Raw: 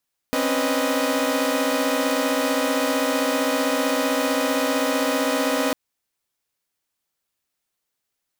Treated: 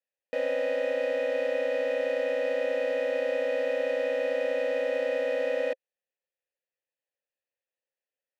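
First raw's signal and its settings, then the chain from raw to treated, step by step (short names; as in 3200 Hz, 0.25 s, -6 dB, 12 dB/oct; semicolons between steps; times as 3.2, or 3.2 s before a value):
chord C4/C#4/B4/D#5 saw, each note -23 dBFS 5.40 s
vowel filter e; bell 890 Hz +9.5 dB 0.72 oct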